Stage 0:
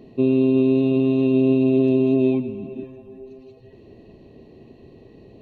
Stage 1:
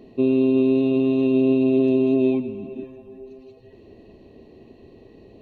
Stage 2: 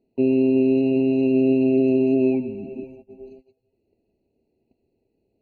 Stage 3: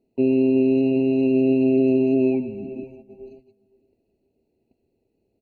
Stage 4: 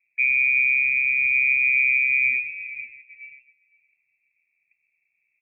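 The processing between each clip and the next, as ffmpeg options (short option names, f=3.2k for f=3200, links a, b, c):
-af "equalizer=f=140:t=o:w=0.72:g=-6.5"
-af "agate=range=-24dB:threshold=-41dB:ratio=16:detection=peak,afftfilt=real='re*eq(mod(floor(b*sr/1024/980),2),0)':imag='im*eq(mod(floor(b*sr/1024/980),2),0)':win_size=1024:overlap=0.75"
-filter_complex "[0:a]asplit=2[a][b];[b]adelay=510,lowpass=f=2k:p=1,volume=-23dB,asplit=2[c][d];[d]adelay=510,lowpass=f=2k:p=1,volume=0.25[e];[a][c][e]amix=inputs=3:normalize=0"
-af "lowpass=f=2.3k:t=q:w=0.5098,lowpass=f=2.3k:t=q:w=0.6013,lowpass=f=2.3k:t=q:w=0.9,lowpass=f=2.3k:t=q:w=2.563,afreqshift=-2700,volume=-2dB"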